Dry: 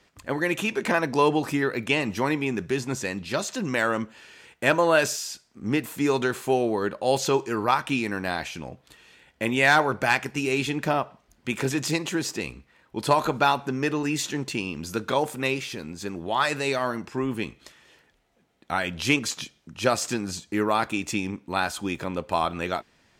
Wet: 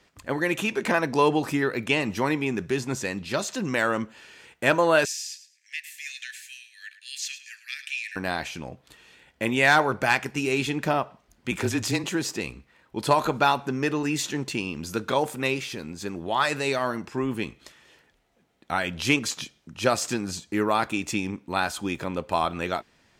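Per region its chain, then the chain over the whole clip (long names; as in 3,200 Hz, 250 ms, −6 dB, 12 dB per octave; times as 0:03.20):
0:05.05–0:08.16: Chebyshev high-pass with heavy ripple 1,700 Hz, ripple 3 dB + high-shelf EQ 11,000 Hz −7.5 dB + repeating echo 107 ms, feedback 23%, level −13.5 dB
0:11.51–0:12.04: frequency shifter −26 Hz + hard clipping −15 dBFS
whole clip: no processing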